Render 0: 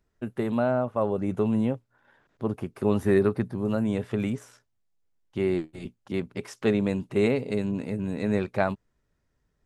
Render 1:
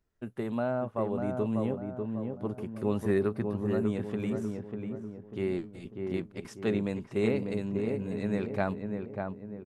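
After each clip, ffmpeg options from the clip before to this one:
-filter_complex "[0:a]asplit=2[a][b];[b]adelay=595,lowpass=f=1.3k:p=1,volume=-4dB,asplit=2[c][d];[d]adelay=595,lowpass=f=1.3k:p=1,volume=0.47,asplit=2[e][f];[f]adelay=595,lowpass=f=1.3k:p=1,volume=0.47,asplit=2[g][h];[h]adelay=595,lowpass=f=1.3k:p=1,volume=0.47,asplit=2[i][j];[j]adelay=595,lowpass=f=1.3k:p=1,volume=0.47,asplit=2[k][l];[l]adelay=595,lowpass=f=1.3k:p=1,volume=0.47[m];[a][c][e][g][i][k][m]amix=inputs=7:normalize=0,volume=-6dB"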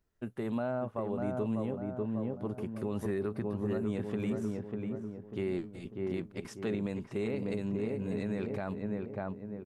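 -af "alimiter=limit=-24dB:level=0:latency=1:release=100"

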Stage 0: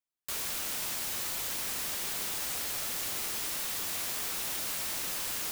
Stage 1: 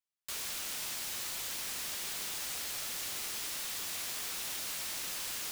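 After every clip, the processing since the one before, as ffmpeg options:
-af "equalizer=f=4.2k:w=0.37:g=5,volume=-6.5dB"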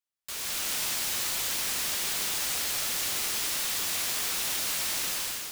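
-af "dynaudnorm=f=180:g=5:m=8.5dB"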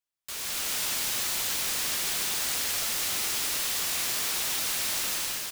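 -af "aecho=1:1:266:0.473"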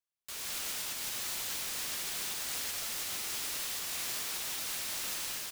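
-af "alimiter=limit=-20.5dB:level=0:latency=1:release=246,volume=-5.5dB"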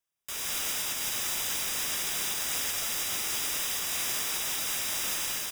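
-af "asuperstop=centerf=4300:order=20:qfactor=7.3,volume=6dB"

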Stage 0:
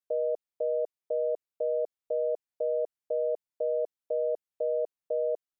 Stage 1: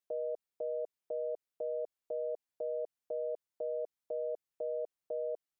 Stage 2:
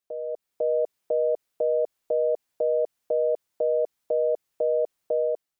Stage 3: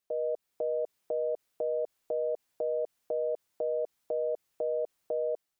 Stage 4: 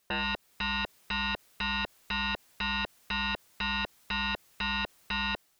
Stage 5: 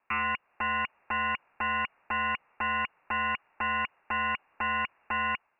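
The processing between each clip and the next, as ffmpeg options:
-af "alimiter=level_in=6dB:limit=-24dB:level=0:latency=1:release=62,volume=-6dB"
-af "dynaudnorm=f=130:g=7:m=10dB,volume=3dB"
-af "alimiter=level_in=1.5dB:limit=-24dB:level=0:latency=1:release=47,volume=-1.5dB,volume=1dB"
-af "aeval=exprs='0.0631*sin(PI/2*5.01*val(0)/0.0631)':c=same,volume=-3.5dB"
-af "highpass=54,lowpass=f=2.5k:t=q:w=0.5098,lowpass=f=2.5k:t=q:w=0.6013,lowpass=f=2.5k:t=q:w=0.9,lowpass=f=2.5k:t=q:w=2.563,afreqshift=-2900,equalizer=f=930:t=o:w=1.2:g=8.5"

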